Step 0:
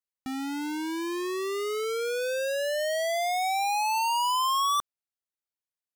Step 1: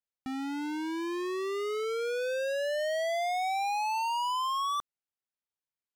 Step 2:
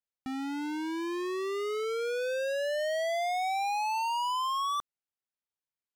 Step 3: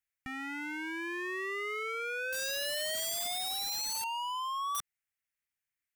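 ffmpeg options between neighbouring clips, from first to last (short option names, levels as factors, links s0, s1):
-af "lowpass=f=3600:p=1,alimiter=level_in=1.5:limit=0.0631:level=0:latency=1,volume=0.668,volume=0.794"
-af anull
-filter_complex "[0:a]acrossover=split=2600[s0][s1];[s1]acompressor=threshold=0.00251:ratio=4:attack=1:release=60[s2];[s0][s2]amix=inputs=2:normalize=0,equalizer=f=250:t=o:w=1:g=-11,equalizer=f=500:t=o:w=1:g=-11,equalizer=f=1000:t=o:w=1:g=-9,equalizer=f=2000:t=o:w=1:g=10,equalizer=f=4000:t=o:w=1:g=-9,aeval=exprs='(mod(53.1*val(0)+1,2)-1)/53.1':c=same,volume=1.68"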